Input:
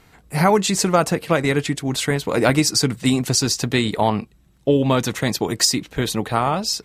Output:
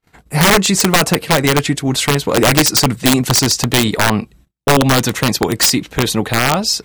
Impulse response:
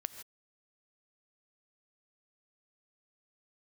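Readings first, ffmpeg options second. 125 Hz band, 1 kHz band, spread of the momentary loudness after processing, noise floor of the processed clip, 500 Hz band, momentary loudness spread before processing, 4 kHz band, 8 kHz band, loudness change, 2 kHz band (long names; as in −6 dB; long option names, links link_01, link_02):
+5.5 dB, +5.0 dB, 6 LU, −55 dBFS, +3.0 dB, 6 LU, +7.5 dB, +7.0 dB, +6.0 dB, +8.5 dB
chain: -af "acontrast=77,agate=range=-37dB:threshold=-43dB:ratio=16:detection=peak,aeval=exprs='(mod(1.78*val(0)+1,2)-1)/1.78':channel_layout=same"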